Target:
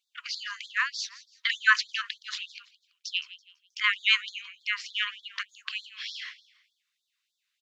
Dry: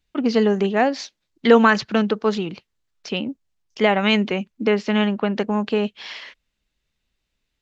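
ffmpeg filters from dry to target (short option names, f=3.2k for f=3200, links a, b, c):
-filter_complex "[0:a]asplit=4[a][b][c][d];[b]adelay=166,afreqshift=52,volume=-17dB[e];[c]adelay=332,afreqshift=104,volume=-26.6dB[f];[d]adelay=498,afreqshift=156,volume=-36.3dB[g];[a][e][f][g]amix=inputs=4:normalize=0,afftfilt=real='re*gte(b*sr/1024,970*pow(3400/970,0.5+0.5*sin(2*PI*3.3*pts/sr)))':imag='im*gte(b*sr/1024,970*pow(3400/970,0.5+0.5*sin(2*PI*3.3*pts/sr)))':win_size=1024:overlap=0.75"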